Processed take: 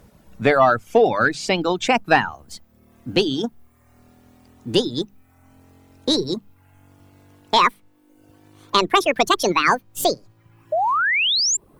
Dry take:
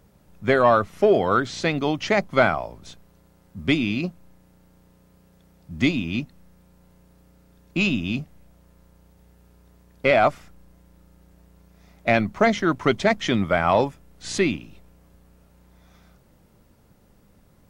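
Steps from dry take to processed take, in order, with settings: gliding tape speed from 104% -> 196%; painted sound rise, 10.72–11.57 s, 590–7600 Hz -23 dBFS; hum notches 50/100/150/200 Hz; reverb removal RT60 0.76 s; in parallel at -1.5 dB: compression, threshold -31 dBFS, peak gain reduction 17.5 dB; on the sum: trim +1.5 dB

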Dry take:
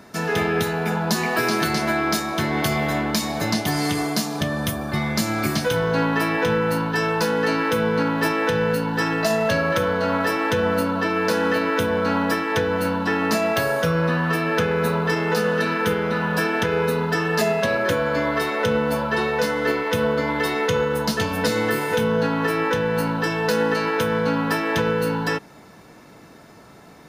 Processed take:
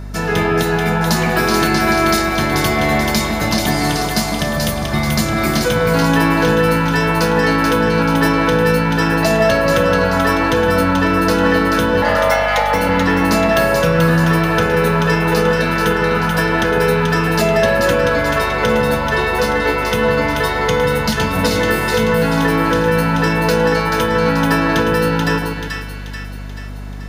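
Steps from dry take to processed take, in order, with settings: 12.02–12.74 s: frequency shift +370 Hz; two-band feedback delay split 1.4 kHz, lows 151 ms, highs 434 ms, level -4 dB; hum 50 Hz, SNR 13 dB; trim +4.5 dB

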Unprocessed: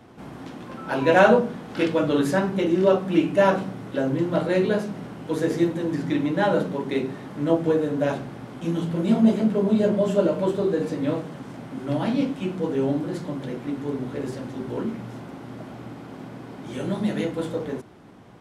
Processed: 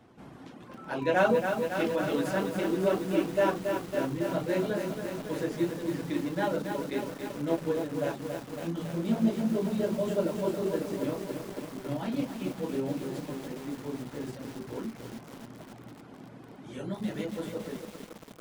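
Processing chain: reverb removal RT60 0.59 s; bit-crushed delay 277 ms, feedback 80%, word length 6-bit, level -6 dB; trim -8 dB

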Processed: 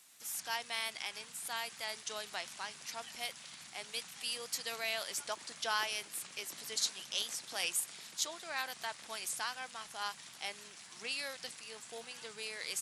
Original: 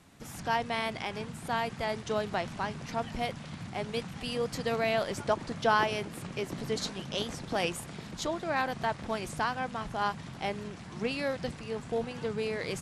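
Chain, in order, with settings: differentiator; trim +6.5 dB

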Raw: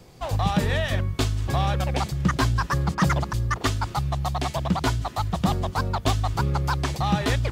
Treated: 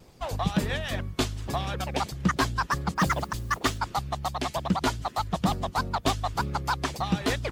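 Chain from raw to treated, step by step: harmonic-percussive split harmonic -11 dB; 2.95–3.78 s: modulation noise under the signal 24 dB; vibrato 2.2 Hz 34 cents

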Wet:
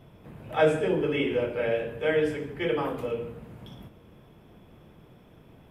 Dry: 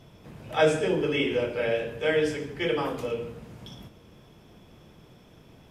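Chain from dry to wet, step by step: peaking EQ 5.7 kHz -12.5 dB 1.3 oct

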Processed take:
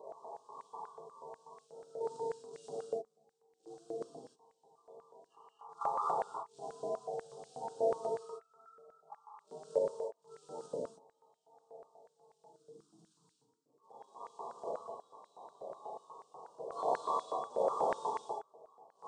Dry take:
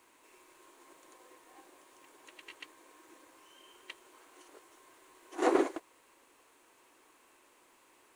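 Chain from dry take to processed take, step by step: recorder AGC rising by 12 dB/s; spectral gate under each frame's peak -10 dB strong; treble shelf 3.8 kHz -9.5 dB; in parallel at +2.5 dB: compression 5:1, threshold -49 dBFS, peak gain reduction 23 dB; on the sum: random-step tremolo 3.5 Hz, depth 85%; inverted gate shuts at -35 dBFS, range -33 dB; short-mantissa float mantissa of 4-bit; gated-style reverb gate 150 ms flat, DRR -6 dB; speed mistake 78 rpm record played at 33 rpm; Butterworth band-stop 2 kHz, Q 0.69; step-sequenced high-pass 8.2 Hz 620–2000 Hz; trim +10.5 dB

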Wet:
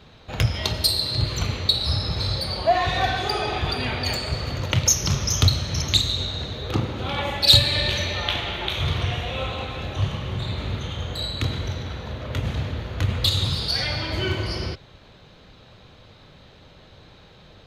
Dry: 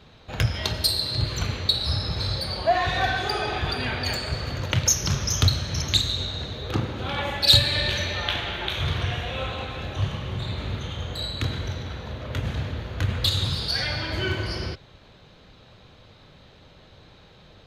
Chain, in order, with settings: dynamic bell 1.6 kHz, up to -7 dB, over -49 dBFS, Q 5.8; trim +2 dB

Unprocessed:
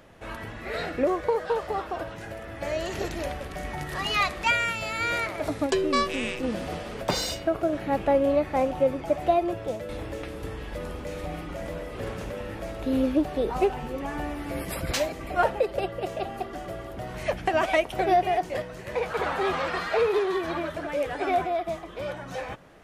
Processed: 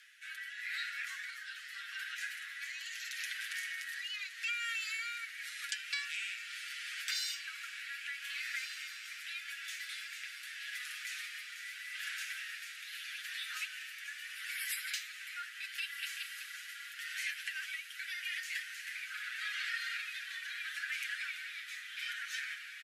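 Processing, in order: steep high-pass 1.5 kHz 72 dB/octave; comb 7.1 ms; compression 6:1, threshold -39 dBFS, peak gain reduction 18 dB; rotary cabinet horn 0.8 Hz; on a send: echo that smears into a reverb 1546 ms, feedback 69%, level -9.5 dB; on the sum: trim +4 dB

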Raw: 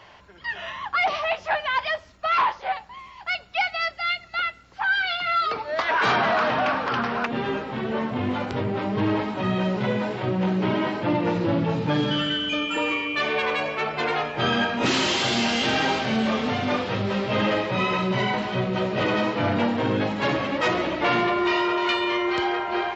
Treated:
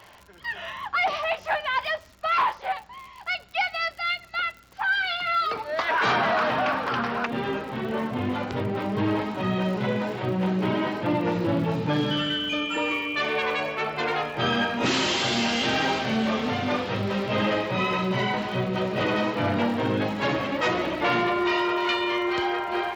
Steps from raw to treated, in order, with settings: crackle 92 per s -36 dBFS; trim -1.5 dB

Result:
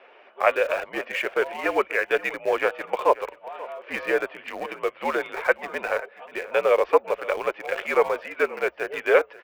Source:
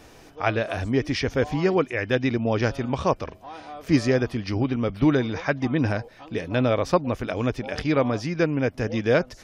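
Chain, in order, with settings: coarse spectral quantiser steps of 15 dB; elliptic band-pass 550–2800 Hz, stop band 60 dB; in parallel at -9.5 dB: small samples zeroed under -31 dBFS; on the sum: frequency shift -67 Hz; on a send: delay 534 ms -19 dB; on the sum: trim +3.5 dB

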